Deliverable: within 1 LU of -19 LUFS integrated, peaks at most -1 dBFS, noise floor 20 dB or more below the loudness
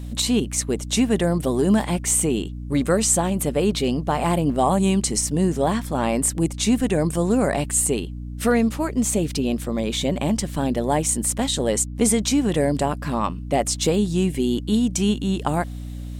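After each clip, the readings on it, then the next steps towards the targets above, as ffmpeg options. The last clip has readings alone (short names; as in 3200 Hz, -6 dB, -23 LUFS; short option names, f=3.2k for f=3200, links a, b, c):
hum 60 Hz; harmonics up to 300 Hz; hum level -30 dBFS; loudness -21.5 LUFS; peak -6.5 dBFS; loudness target -19.0 LUFS
-> -af "bandreject=f=60:t=h:w=6,bandreject=f=120:t=h:w=6,bandreject=f=180:t=h:w=6,bandreject=f=240:t=h:w=6,bandreject=f=300:t=h:w=6"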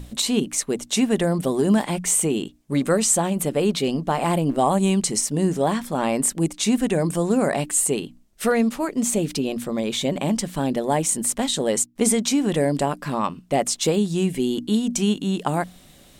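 hum none; loudness -22.0 LUFS; peak -6.5 dBFS; loudness target -19.0 LUFS
-> -af "volume=3dB"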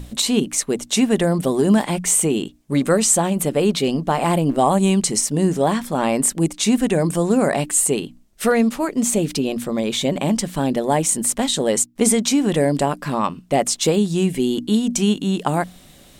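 loudness -19.0 LUFS; peak -3.5 dBFS; noise floor -48 dBFS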